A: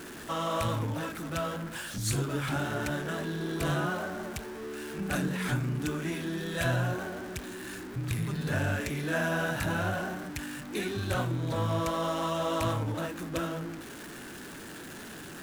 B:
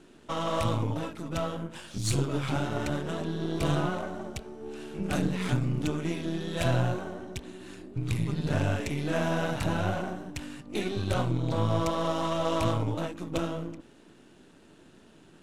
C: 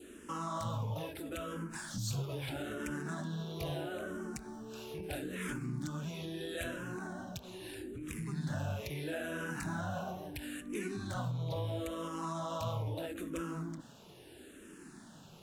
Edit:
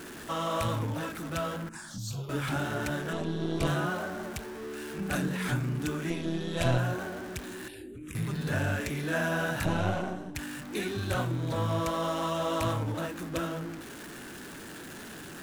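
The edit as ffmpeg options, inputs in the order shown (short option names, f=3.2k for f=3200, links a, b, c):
-filter_complex "[2:a]asplit=2[a][b];[1:a]asplit=3[c][d][e];[0:a]asplit=6[f][g][h][i][j][k];[f]atrim=end=1.692[l];[a]atrim=start=1.688:end=2.292[m];[g]atrim=start=2.288:end=3.132[n];[c]atrim=start=3.128:end=3.672[o];[h]atrim=start=3.668:end=6.102[p];[d]atrim=start=6.098:end=6.782[q];[i]atrim=start=6.778:end=7.682[r];[b]atrim=start=7.678:end=8.152[s];[j]atrim=start=8.148:end=9.652[t];[e]atrim=start=9.648:end=10.352[u];[k]atrim=start=10.348[v];[l][m]acrossfade=d=0.004:c1=hsin:c2=hsin[w];[w][n]acrossfade=d=0.004:c1=hsin:c2=hsin[x];[x][o]acrossfade=d=0.004:c1=hsin:c2=hsin[y];[y][p]acrossfade=d=0.004:c1=hsin:c2=hsin[z];[z][q]acrossfade=d=0.004:c1=hsin:c2=hsin[aa];[aa][r]acrossfade=d=0.004:c1=hsin:c2=hsin[ab];[ab][s]acrossfade=d=0.004:c1=hsin:c2=hsin[ac];[ac][t]acrossfade=d=0.004:c1=hsin:c2=hsin[ad];[ad][u]acrossfade=d=0.004:c1=hsin:c2=hsin[ae];[ae][v]acrossfade=d=0.004:c1=hsin:c2=hsin"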